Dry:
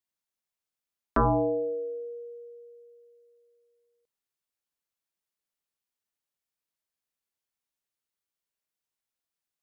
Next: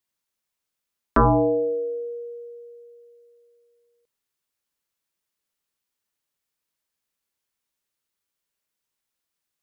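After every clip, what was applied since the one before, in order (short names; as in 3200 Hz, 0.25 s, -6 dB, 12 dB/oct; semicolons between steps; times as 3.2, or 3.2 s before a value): bell 720 Hz -4.5 dB 0.23 oct; gain +6.5 dB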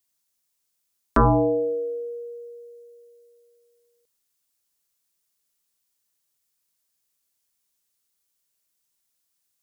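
tone controls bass +2 dB, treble +10 dB; gain -1 dB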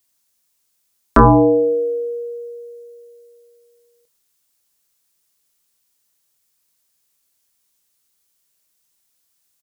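doubler 27 ms -12 dB; gain +7.5 dB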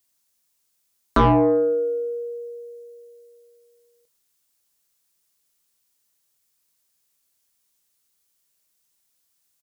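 soft clip -8.5 dBFS, distortion -14 dB; gain -3 dB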